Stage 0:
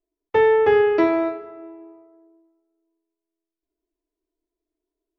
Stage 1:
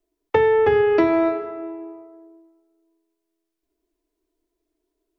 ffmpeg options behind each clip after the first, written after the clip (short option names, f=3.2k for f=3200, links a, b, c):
-filter_complex "[0:a]acrossover=split=180[a][b];[b]acompressor=threshold=-22dB:ratio=10[c];[a][c]amix=inputs=2:normalize=0,volume=7.5dB"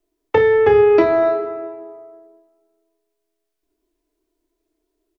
-af "aecho=1:1:29|56:0.447|0.211,volume=2.5dB"